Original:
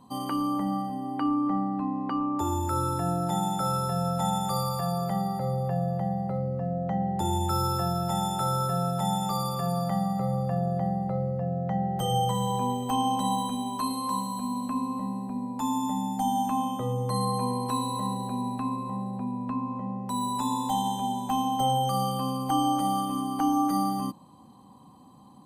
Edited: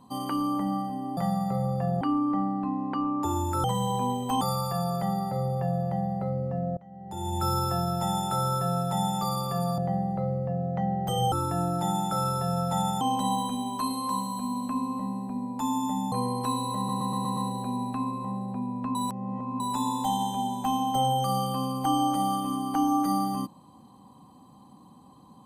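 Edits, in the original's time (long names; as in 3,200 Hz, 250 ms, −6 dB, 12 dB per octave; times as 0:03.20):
0:02.80–0:04.49: swap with 0:12.24–0:13.01
0:06.85–0:07.52: fade in quadratic, from −23 dB
0:09.86–0:10.70: move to 0:01.17
0:16.12–0:17.37: remove
0:18.02: stutter 0.12 s, 6 plays
0:19.60–0:20.25: reverse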